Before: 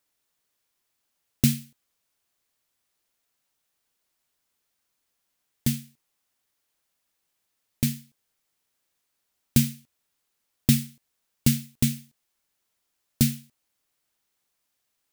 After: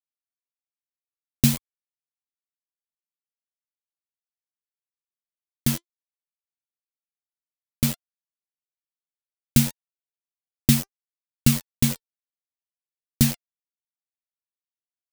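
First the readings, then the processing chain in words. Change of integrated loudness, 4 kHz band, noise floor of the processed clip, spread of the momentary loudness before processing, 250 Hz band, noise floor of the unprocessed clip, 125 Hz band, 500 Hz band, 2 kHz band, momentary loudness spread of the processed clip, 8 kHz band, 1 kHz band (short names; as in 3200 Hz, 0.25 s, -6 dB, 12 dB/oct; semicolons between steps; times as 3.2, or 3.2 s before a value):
+2.5 dB, +3.5 dB, under -85 dBFS, 12 LU, +1.5 dB, -78 dBFS, +2.0 dB, +3.5 dB, +4.0 dB, 11 LU, +3.5 dB, n/a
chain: bit-crush 5-bit; flange 0.61 Hz, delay 0.7 ms, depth 2.4 ms, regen +77%; gain +7 dB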